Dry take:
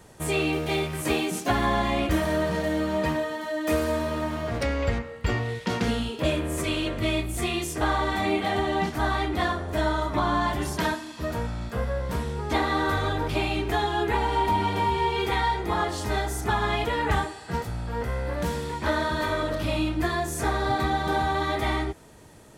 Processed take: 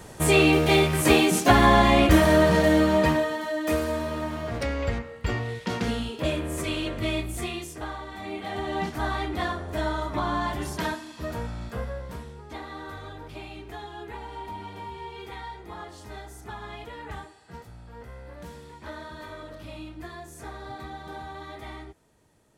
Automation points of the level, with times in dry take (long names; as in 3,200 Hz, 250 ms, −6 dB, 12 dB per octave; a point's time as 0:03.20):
0:02.75 +7 dB
0:03.88 −2 dB
0:07.30 −2 dB
0:08.08 −13.5 dB
0:08.79 −3 dB
0:11.73 −3 dB
0:12.48 −14 dB